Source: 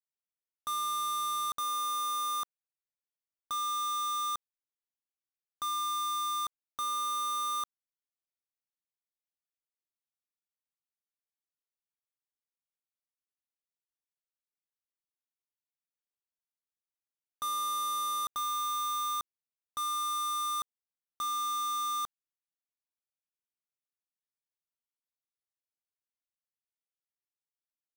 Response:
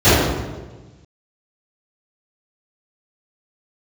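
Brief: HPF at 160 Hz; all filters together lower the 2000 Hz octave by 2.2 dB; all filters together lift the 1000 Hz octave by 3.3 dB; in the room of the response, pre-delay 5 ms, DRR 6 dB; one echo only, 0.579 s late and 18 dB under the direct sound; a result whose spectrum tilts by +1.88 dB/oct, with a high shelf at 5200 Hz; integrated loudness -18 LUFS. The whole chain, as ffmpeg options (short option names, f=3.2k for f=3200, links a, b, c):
-filter_complex "[0:a]highpass=160,equalizer=f=1k:t=o:g=6,equalizer=f=2k:t=o:g=-5,highshelf=f=5.2k:g=3.5,aecho=1:1:579:0.126,asplit=2[a][b];[1:a]atrim=start_sample=2205,adelay=5[c];[b][c]afir=irnorm=-1:irlink=0,volume=-35.5dB[d];[a][d]amix=inputs=2:normalize=0,volume=12dB"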